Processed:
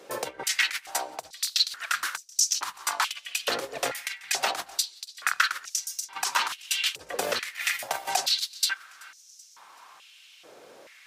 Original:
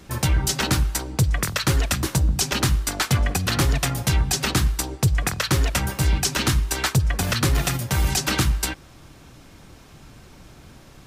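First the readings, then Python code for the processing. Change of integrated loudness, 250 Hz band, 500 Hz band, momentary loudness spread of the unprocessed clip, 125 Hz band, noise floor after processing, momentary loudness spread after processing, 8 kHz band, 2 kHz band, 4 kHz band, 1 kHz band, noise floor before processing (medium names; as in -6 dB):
-5.5 dB, -22.5 dB, -5.0 dB, 2 LU, -39.0 dB, -54 dBFS, 8 LU, -3.0 dB, -1.5 dB, -1.0 dB, -2.0 dB, -48 dBFS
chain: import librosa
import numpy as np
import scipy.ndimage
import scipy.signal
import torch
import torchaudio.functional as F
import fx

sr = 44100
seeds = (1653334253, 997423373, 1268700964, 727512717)

y = fx.high_shelf(x, sr, hz=11000.0, db=-3.0)
y = fx.over_compress(y, sr, threshold_db=-22.0, ratio=-0.5)
y = fx.echo_feedback(y, sr, ms=381, feedback_pct=51, wet_db=-23)
y = fx.filter_held_highpass(y, sr, hz=2.3, low_hz=490.0, high_hz=5900.0)
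y = F.gain(torch.from_numpy(y), -5.5).numpy()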